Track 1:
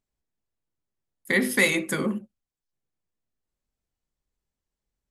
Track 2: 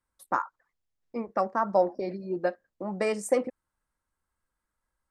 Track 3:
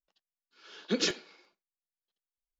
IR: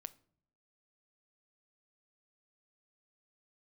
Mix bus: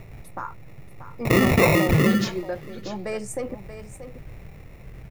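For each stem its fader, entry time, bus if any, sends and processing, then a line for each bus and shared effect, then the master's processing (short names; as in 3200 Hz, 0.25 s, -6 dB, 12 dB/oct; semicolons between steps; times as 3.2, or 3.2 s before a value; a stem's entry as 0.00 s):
+2.0 dB, 0.00 s, no send, echo send -23.5 dB, sample-and-hold 28×; ten-band EQ 125 Hz +12 dB, 250 Hz -6 dB, 1000 Hz -8 dB, 2000 Hz +7 dB, 4000 Hz -7 dB, 8000 Hz -6 dB; fast leveller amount 70%
+1.0 dB, 0.05 s, no send, echo send -11.5 dB, limiter -22 dBFS, peak gain reduction 10.5 dB
-3.5 dB, 1.20 s, no send, echo send -10 dB, dry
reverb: off
echo: echo 0.633 s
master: dry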